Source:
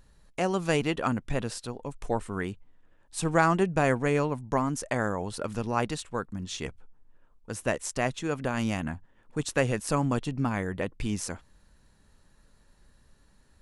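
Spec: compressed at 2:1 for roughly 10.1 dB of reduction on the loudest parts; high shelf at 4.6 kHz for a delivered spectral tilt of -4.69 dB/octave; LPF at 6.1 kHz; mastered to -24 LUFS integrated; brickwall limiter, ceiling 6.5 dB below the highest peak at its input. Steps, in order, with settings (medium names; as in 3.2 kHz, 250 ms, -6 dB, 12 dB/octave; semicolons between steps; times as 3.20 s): low-pass 6.1 kHz; treble shelf 4.6 kHz +8 dB; compression 2:1, threshold -37 dBFS; trim +14.5 dB; peak limiter -10 dBFS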